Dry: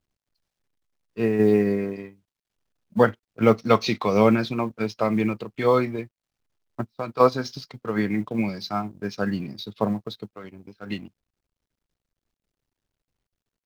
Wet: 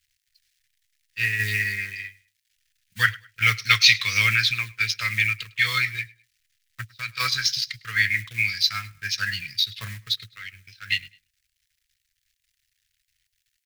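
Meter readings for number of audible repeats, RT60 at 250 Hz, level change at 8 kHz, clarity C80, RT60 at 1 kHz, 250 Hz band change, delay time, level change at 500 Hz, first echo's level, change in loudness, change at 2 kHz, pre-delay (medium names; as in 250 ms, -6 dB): 2, no reverb, no reading, no reverb, no reverb, -24.5 dB, 104 ms, -28.0 dB, -23.0 dB, +1.5 dB, +13.5 dB, no reverb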